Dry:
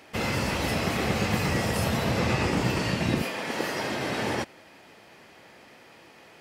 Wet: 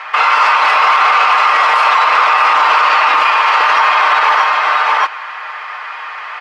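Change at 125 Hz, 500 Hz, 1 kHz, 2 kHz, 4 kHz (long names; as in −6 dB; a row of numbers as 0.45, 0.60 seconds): below −30 dB, +6.0 dB, +25.0 dB, +19.5 dB, +14.5 dB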